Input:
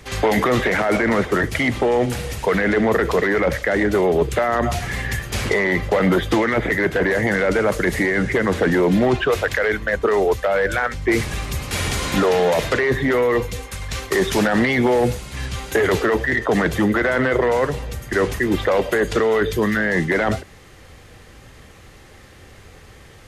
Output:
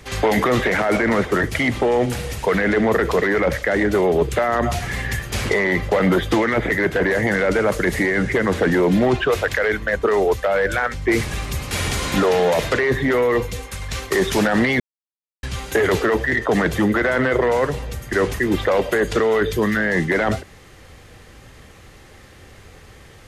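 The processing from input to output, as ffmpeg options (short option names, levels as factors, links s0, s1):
-filter_complex "[0:a]asplit=3[s0][s1][s2];[s0]atrim=end=14.8,asetpts=PTS-STARTPTS,afade=t=out:st=14.796:d=0.004:c=hsin[s3];[s1]atrim=start=14.8:end=15.43,asetpts=PTS-STARTPTS,volume=0[s4];[s2]atrim=start=15.43,asetpts=PTS-STARTPTS,afade=t=in:d=0.004:c=hsin[s5];[s3][s4][s5]concat=n=3:v=0:a=1"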